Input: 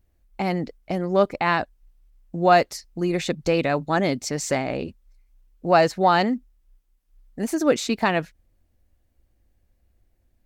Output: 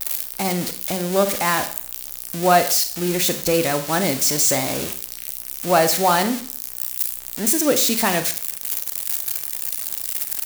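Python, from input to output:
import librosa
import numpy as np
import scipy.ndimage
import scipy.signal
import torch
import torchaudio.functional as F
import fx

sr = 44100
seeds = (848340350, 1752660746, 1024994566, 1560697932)

y = x + 0.5 * 10.0 ** (-12.5 / 20.0) * np.diff(np.sign(x), prepend=np.sign(x[:1]))
y = fx.rev_schroeder(y, sr, rt60_s=0.47, comb_ms=30, drr_db=8.5)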